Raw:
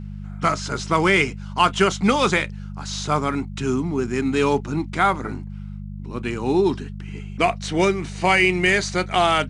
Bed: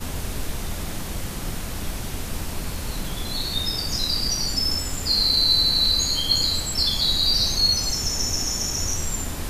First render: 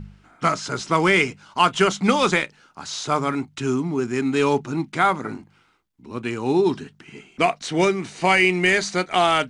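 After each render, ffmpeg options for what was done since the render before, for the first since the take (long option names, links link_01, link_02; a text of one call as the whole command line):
ffmpeg -i in.wav -af "bandreject=frequency=50:width_type=h:width=4,bandreject=frequency=100:width_type=h:width=4,bandreject=frequency=150:width_type=h:width=4,bandreject=frequency=200:width_type=h:width=4" out.wav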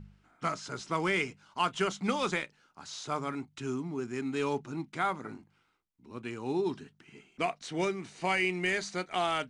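ffmpeg -i in.wav -af "volume=-12dB" out.wav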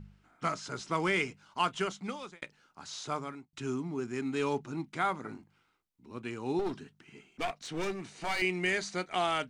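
ffmpeg -i in.wav -filter_complex "[0:a]asettb=1/sr,asplit=3[link_01][link_02][link_03];[link_01]atrim=end=6.594[link_04];[link_02]atrim=start=6.59:end=8.42,asetpts=PTS-STARTPTS,afade=type=in:duration=0.004:curve=qsin,afade=type=out:start_time=1.826:duration=0.004:curve=qsin,aeval=exprs='clip(val(0),-1,0.0158)':channel_layout=same[link_05];[link_03]atrim=start=8.416[link_06];[link_04][link_05]acrossfade=duration=0.004:curve1=hsin:curve2=qsin[link_07];[link_07][link_06]acrossfade=duration=0.004:curve1=qsin:curve2=hsin,asplit=3[link_08][link_09][link_10];[link_08]atrim=end=2.42,asetpts=PTS-STARTPTS,afade=type=out:start_time=1.61:duration=0.81[link_11];[link_09]atrim=start=2.42:end=3.53,asetpts=PTS-STARTPTS,afade=type=in:duration=0.004:curve=hsin,afade=type=out:start_time=0.65:duration=0.46[link_12];[link_10]atrim=start=3.53,asetpts=PTS-STARTPTS,afade=type=in:duration=0.004:curve=hsin[link_13];[link_11][link_12][link_13]concat=n=3:v=0:a=1" out.wav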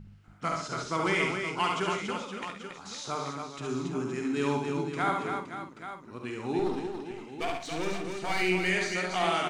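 ffmpeg -i in.wav -filter_complex "[0:a]asplit=2[link_01][link_02];[link_02]adelay=49,volume=-8dB[link_03];[link_01][link_03]amix=inputs=2:normalize=0,aecho=1:1:71|133|280|518|832:0.631|0.266|0.531|0.299|0.282" out.wav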